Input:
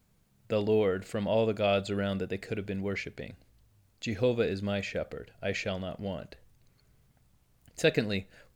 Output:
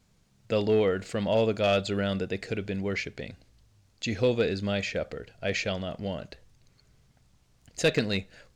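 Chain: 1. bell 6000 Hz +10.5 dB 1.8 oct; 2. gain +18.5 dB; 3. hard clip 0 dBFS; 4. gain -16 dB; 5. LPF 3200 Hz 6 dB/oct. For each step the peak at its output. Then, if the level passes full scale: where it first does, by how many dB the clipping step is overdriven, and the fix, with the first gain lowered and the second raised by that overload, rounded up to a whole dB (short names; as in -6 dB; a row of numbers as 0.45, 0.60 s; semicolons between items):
-10.5, +8.0, 0.0, -16.0, -16.0 dBFS; step 2, 8.0 dB; step 2 +10.5 dB, step 4 -8 dB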